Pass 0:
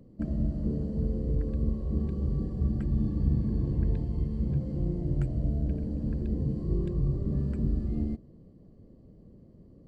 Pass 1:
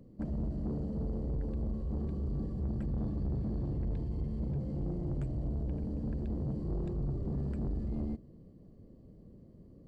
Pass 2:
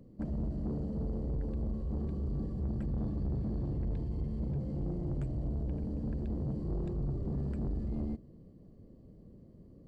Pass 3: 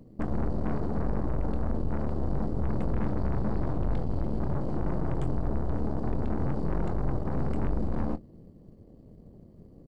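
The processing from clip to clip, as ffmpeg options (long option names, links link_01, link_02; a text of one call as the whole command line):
ffmpeg -i in.wav -af "asoftclip=type=tanh:threshold=-28.5dB,volume=-1.5dB" out.wav
ffmpeg -i in.wav -af anull out.wav
ffmpeg -i in.wav -filter_complex "[0:a]aeval=exprs='0.0335*(cos(1*acos(clip(val(0)/0.0335,-1,1)))-cos(1*PI/2))+0.0168*(cos(4*acos(clip(val(0)/0.0335,-1,1)))-cos(4*PI/2))':channel_layout=same,asplit=2[link_01][link_02];[link_02]adelay=24,volume=-12dB[link_03];[link_01][link_03]amix=inputs=2:normalize=0,volume=3dB" out.wav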